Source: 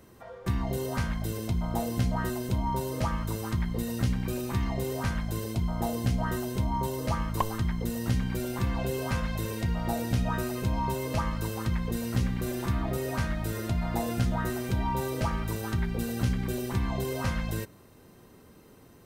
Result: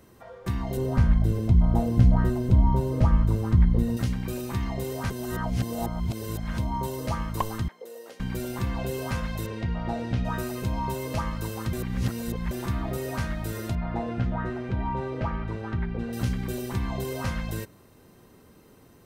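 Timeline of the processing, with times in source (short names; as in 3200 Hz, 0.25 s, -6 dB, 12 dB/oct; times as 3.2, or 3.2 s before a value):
0.77–3.97 tilt -3 dB/oct
5.1–6.58 reverse
7.68–8.2 ladder high-pass 440 Hz, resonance 65%
9.46–10.25 LPF 3600 Hz
11.73–12.51 reverse
13.75–16.13 LPF 2300 Hz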